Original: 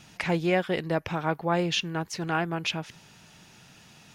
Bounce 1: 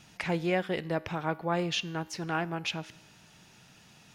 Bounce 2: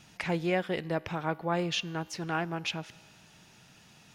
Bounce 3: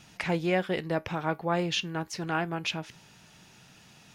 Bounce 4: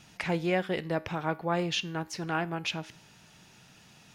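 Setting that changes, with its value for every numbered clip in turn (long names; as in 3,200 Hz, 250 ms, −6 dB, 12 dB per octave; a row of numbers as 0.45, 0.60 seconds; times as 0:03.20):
tuned comb filter, decay: 0.97, 2.1, 0.18, 0.46 seconds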